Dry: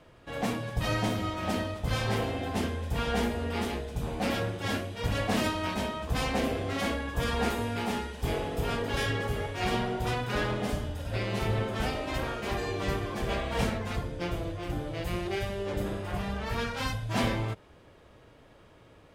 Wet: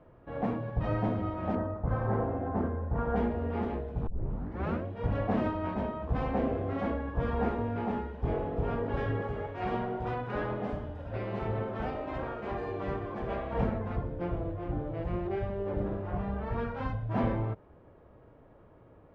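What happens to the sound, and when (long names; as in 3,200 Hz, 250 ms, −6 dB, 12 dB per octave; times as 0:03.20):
0:01.55–0:03.16: high shelf with overshoot 2,000 Hz −10.5 dB, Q 1.5
0:04.07: tape start 0.78 s
0:09.22–0:13.53: spectral tilt +1.5 dB per octave
whole clip: low-pass filter 1,100 Hz 12 dB per octave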